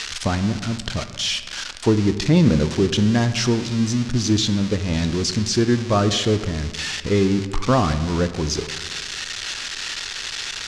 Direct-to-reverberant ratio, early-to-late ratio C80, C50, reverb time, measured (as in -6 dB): 10.0 dB, 13.0 dB, 11.5 dB, 1.6 s